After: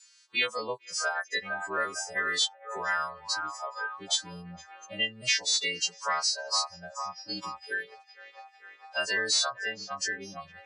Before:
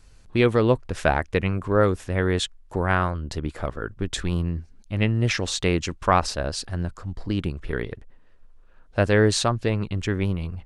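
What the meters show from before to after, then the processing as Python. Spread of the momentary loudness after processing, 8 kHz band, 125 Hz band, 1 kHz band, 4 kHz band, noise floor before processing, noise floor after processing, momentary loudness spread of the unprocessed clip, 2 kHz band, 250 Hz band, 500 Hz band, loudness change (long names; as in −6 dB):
18 LU, +2.0 dB, −28.5 dB, −6.0 dB, +3.0 dB, −51 dBFS, −58 dBFS, 11 LU, −0.5 dB, −21.5 dB, −15.0 dB, −5.5 dB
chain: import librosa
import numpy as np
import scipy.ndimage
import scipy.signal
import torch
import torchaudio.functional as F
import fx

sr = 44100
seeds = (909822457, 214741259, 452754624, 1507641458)

p1 = fx.freq_snap(x, sr, grid_st=2)
p2 = fx.highpass(p1, sr, hz=360.0, slope=6)
p3 = fx.tilt_eq(p2, sr, slope=3.5)
p4 = fx.spec_topn(p3, sr, count=64)
p5 = p4 + fx.echo_wet_bandpass(p4, sr, ms=454, feedback_pct=53, hz=1200.0, wet_db=-7.5, dry=0)
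p6 = 10.0 ** (-0.5 / 20.0) * np.tanh(p5 / 10.0 ** (-0.5 / 20.0))
p7 = fx.noise_reduce_blind(p6, sr, reduce_db=22)
p8 = scipy.signal.sosfilt(scipy.signal.butter(4, 6200.0, 'lowpass', fs=sr, output='sos'), p7)
p9 = fx.band_squash(p8, sr, depth_pct=70)
y = F.gain(torch.from_numpy(p9), -7.5).numpy()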